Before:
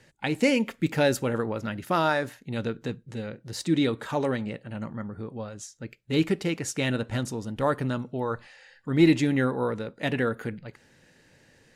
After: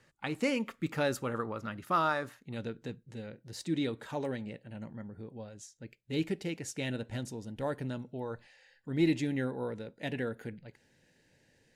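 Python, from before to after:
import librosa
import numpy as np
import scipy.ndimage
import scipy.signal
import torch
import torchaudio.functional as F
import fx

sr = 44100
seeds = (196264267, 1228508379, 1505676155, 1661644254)

y = fx.peak_eq(x, sr, hz=1200.0, db=fx.steps((0.0, 10.5), (2.55, -5.5), (4.26, -11.5)), octaves=0.36)
y = y * 10.0 ** (-8.5 / 20.0)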